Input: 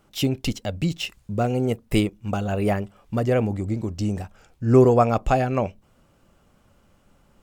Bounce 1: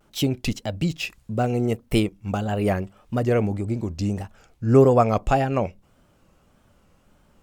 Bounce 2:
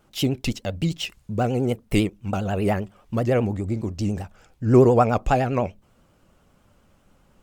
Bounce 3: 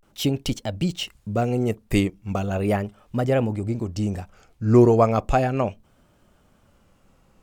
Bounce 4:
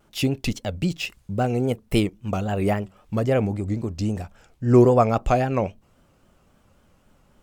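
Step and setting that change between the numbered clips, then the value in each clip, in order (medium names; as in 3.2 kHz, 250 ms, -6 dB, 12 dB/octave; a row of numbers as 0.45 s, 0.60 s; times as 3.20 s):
vibrato, rate: 1.7 Hz, 10 Hz, 0.37 Hz, 3.7 Hz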